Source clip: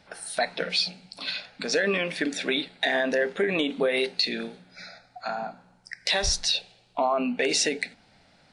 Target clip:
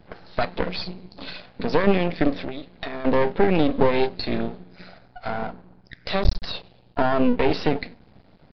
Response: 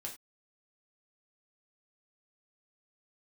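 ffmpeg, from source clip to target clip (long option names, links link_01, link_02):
-filter_complex "[0:a]tiltshelf=frequency=730:gain=9,asettb=1/sr,asplit=3[link_01][link_02][link_03];[link_01]atrim=end=2.434[link_04];[link_02]atrim=start=2.43:end=3.05,asetpts=PTS-STARTPTS,afade=type=in:duration=0.004:curve=qsin,afade=type=out:start_time=0.616:duration=0.004:curve=qsin,acompressor=threshold=-32dB:ratio=16[link_05];[link_03]atrim=start=3.046[link_06];[link_04][link_05]acrossfade=duration=0.004:curve1=hsin:curve2=qsin[link_07];[link_07][link_06]acrossfade=duration=0.004:curve1=qsin:curve2=hsin,aeval=exprs='max(val(0),0)':channel_layout=same,aresample=11025,aresample=44100,volume=6.5dB"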